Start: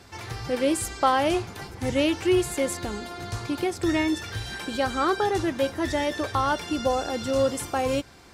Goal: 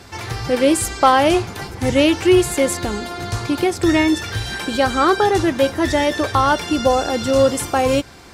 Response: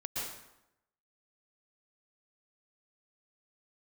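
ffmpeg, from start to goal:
-af "asoftclip=type=hard:threshold=-10.5dB,volume=8.5dB"

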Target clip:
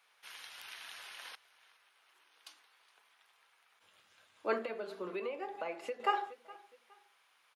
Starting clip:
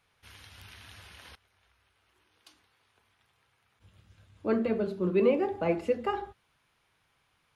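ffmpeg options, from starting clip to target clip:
-filter_complex "[0:a]highpass=690,aecho=1:1:416|832:0.0794|0.0246,asettb=1/sr,asplit=3[a][b][c];[a]atrim=end=4.584[d];[b]atrim=start=4.58:end=6,asetpts=PTS-STARTPTS,afade=t=in:d=0.004:c=qsin,afade=t=out:st=1.416:d=0.004:c=qsin,acompressor=threshold=-40dB:ratio=6[e];[c]atrim=start=5.996[f];[d][e]acrossfade=d=0.004:c1=hsin:c2=qsin[g];[g][f]acrossfade=d=0.004:c1=qsin:c2=hsin,volume=3dB"

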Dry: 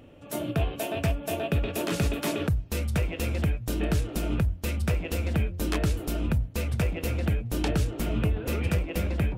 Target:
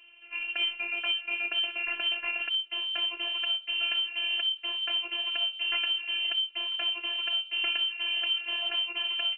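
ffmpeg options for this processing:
-filter_complex "[0:a]lowpass=f=2.6k:t=q:w=0.5098,lowpass=f=2.6k:t=q:w=0.6013,lowpass=f=2.6k:t=q:w=0.9,lowpass=f=2.6k:t=q:w=2.563,afreqshift=-3100,afftfilt=real='hypot(re,im)*cos(PI*b)':imag='0':win_size=512:overlap=0.75,asplit=2[a][b];[b]adelay=63,lowpass=f=1.1k:p=1,volume=-14dB,asplit=2[c][d];[d]adelay=63,lowpass=f=1.1k:p=1,volume=0.4,asplit=2[e][f];[f]adelay=63,lowpass=f=1.1k:p=1,volume=0.4,asplit=2[g][h];[h]adelay=63,lowpass=f=1.1k:p=1,volume=0.4[i];[a][c][e][g][i]amix=inputs=5:normalize=0"

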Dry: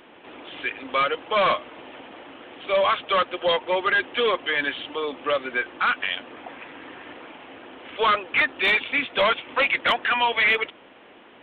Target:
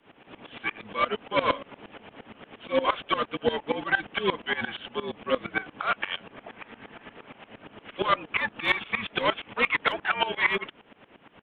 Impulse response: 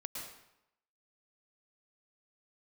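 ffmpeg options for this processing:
-filter_complex "[0:a]afreqshift=-54,asplit=2[a][b];[b]asetrate=22050,aresample=44100,atempo=2,volume=-9dB[c];[a][c]amix=inputs=2:normalize=0,aeval=exprs='val(0)*pow(10,-19*if(lt(mod(-8.6*n/s,1),2*abs(-8.6)/1000),1-mod(-8.6*n/s,1)/(2*abs(-8.6)/1000),(mod(-8.6*n/s,1)-2*abs(-8.6)/1000)/(1-2*abs(-8.6)/1000))/20)':c=same,volume=1dB"

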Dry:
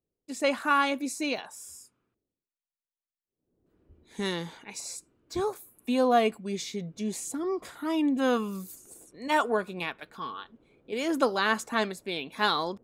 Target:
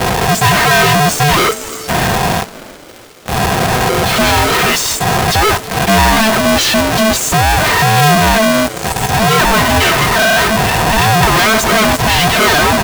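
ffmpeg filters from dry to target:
-filter_complex "[0:a]aeval=exprs='val(0)+0.5*0.0188*sgn(val(0))':c=same,aemphasis=mode=reproduction:type=bsi,afftdn=nr=14:nf=-42,aecho=1:1:3.6:0.93,asplit=2[a][b];[b]alimiter=limit=-20.5dB:level=0:latency=1,volume=1.5dB[c];[a][c]amix=inputs=2:normalize=0,asplit=2[d][e];[e]highpass=f=720:p=1,volume=31dB,asoftclip=type=tanh:threshold=-6.5dB[f];[d][f]amix=inputs=2:normalize=0,lowpass=f=5.1k:p=1,volume=-6dB,acrusher=bits=4:dc=4:mix=0:aa=0.000001,asplit=2[g][h];[h]asplit=5[i][j][k][l][m];[i]adelay=318,afreqshift=-94,volume=-20dB[n];[j]adelay=636,afreqshift=-188,volume=-24.7dB[o];[k]adelay=954,afreqshift=-282,volume=-29.5dB[p];[l]adelay=1272,afreqshift=-376,volume=-34.2dB[q];[m]adelay=1590,afreqshift=-470,volume=-38.9dB[r];[n][o][p][q][r]amix=inputs=5:normalize=0[s];[g][s]amix=inputs=2:normalize=0,aeval=exprs='val(0)*sgn(sin(2*PI*440*n/s))':c=same,volume=2dB"

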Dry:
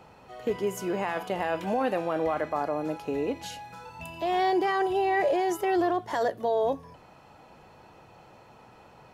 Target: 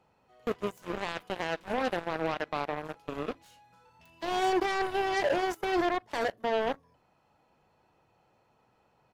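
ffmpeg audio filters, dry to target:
-filter_complex "[0:a]asplit=2[a][b];[b]adelay=40,volume=-13.5dB[c];[a][c]amix=inputs=2:normalize=0,aeval=exprs='0.188*(cos(1*acos(clip(val(0)/0.188,-1,1)))-cos(1*PI/2))+0.0335*(cos(7*acos(clip(val(0)/0.188,-1,1)))-cos(7*PI/2))':c=same,volume=-3.5dB"

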